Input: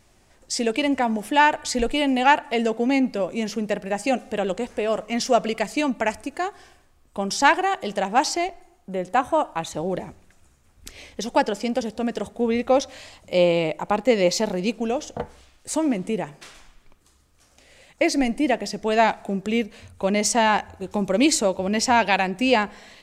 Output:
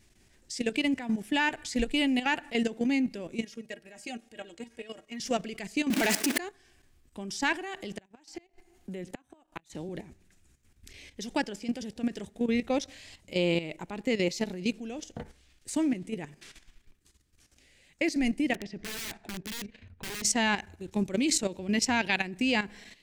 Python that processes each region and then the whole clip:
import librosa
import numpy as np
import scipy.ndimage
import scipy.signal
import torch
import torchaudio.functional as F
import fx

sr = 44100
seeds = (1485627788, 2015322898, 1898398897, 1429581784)

y = fx.chain(x, sr, fx.low_shelf(hz=250.0, db=-8.5),
    fx.stiff_resonator(f0_hz=69.0, decay_s=0.21, stiffness=0.03), at=(3.42, 5.2))
y = fx.chain(y, sr, fx.zero_step(step_db=-24.0),
    fx.highpass(hz=220.0, slope=24),
    fx.leveller(passes=2), at=(5.9, 6.38))
y = fx.chain(y, sr, fx.gate_flip(shuts_db=-15.0, range_db=-30),
    fx.band_squash(depth_pct=40), at=(7.79, 9.89))
y = fx.chain(y, sr, fx.env_lowpass(base_hz=1700.0, full_db=-14.0),
    fx.overflow_wrap(gain_db=19.5), at=(18.54, 20.22))
y = fx.band_shelf(y, sr, hz=810.0, db=-9.0, octaves=1.7)
y = fx.level_steps(y, sr, step_db=12)
y = F.gain(torch.from_numpy(y), -1.5).numpy()